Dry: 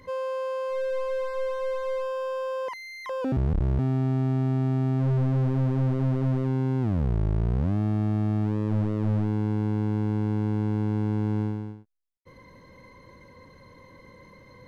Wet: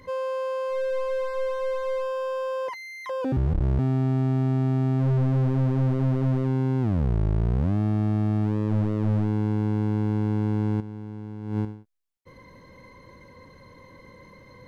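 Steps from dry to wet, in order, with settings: 2.67–3.63 notch comb 220 Hz; 10.8–11.65 negative-ratio compressor -32 dBFS, ratio -0.5; gain +1.5 dB

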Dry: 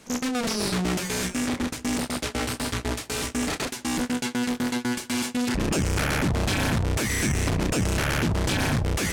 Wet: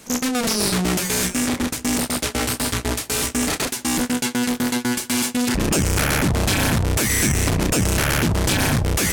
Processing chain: high shelf 9000 Hz +11.5 dB; gain +4.5 dB

